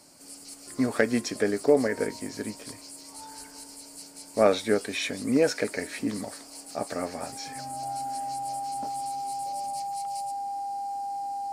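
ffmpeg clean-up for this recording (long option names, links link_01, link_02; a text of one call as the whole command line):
ffmpeg -i in.wav -af "bandreject=frequency=800:width=30" out.wav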